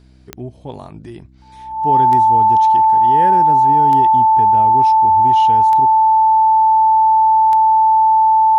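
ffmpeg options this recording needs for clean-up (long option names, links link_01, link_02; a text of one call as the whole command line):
ffmpeg -i in.wav -af "adeclick=threshold=4,bandreject=frequency=63.9:width_type=h:width=4,bandreject=frequency=127.8:width_type=h:width=4,bandreject=frequency=191.7:width_type=h:width=4,bandreject=frequency=255.6:width_type=h:width=4,bandreject=frequency=319.5:width_type=h:width=4,bandreject=frequency=880:width=30" out.wav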